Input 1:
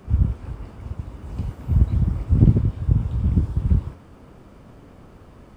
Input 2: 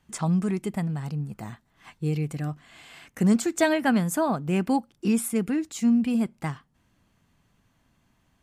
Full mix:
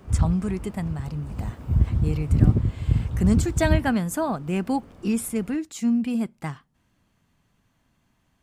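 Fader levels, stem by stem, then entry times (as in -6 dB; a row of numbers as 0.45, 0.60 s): -2.5, -1.0 dB; 0.00, 0.00 s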